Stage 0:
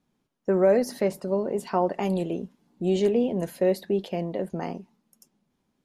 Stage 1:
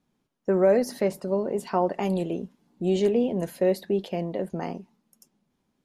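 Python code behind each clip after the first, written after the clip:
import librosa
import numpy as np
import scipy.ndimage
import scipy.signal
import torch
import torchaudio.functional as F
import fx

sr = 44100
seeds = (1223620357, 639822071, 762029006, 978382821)

y = x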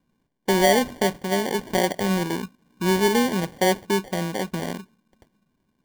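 y = fx.low_shelf(x, sr, hz=360.0, db=5.0)
y = fx.sample_hold(y, sr, seeds[0], rate_hz=1300.0, jitter_pct=0)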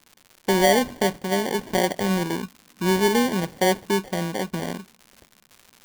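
y = fx.dmg_crackle(x, sr, seeds[1], per_s=180.0, level_db=-35.0)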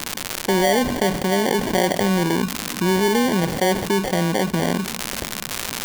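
y = fx.env_flatten(x, sr, amount_pct=70)
y = F.gain(torch.from_numpy(y), -1.5).numpy()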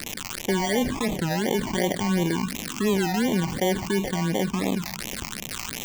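y = fx.phaser_stages(x, sr, stages=8, low_hz=470.0, high_hz=1500.0, hz=2.8, feedback_pct=5)
y = fx.record_warp(y, sr, rpm=33.33, depth_cents=250.0)
y = F.gain(torch.from_numpy(y), -2.5).numpy()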